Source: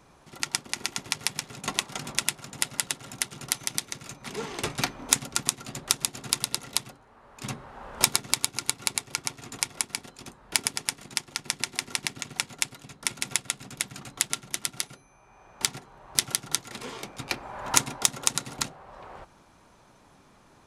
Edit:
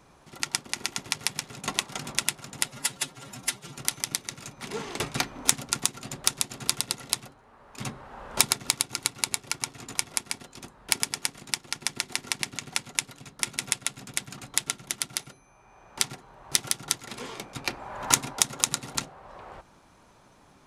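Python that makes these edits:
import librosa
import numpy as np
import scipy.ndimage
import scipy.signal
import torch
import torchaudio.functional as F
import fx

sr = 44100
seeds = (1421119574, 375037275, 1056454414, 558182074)

y = fx.edit(x, sr, fx.stretch_span(start_s=2.68, length_s=0.73, factor=1.5), tone=tone)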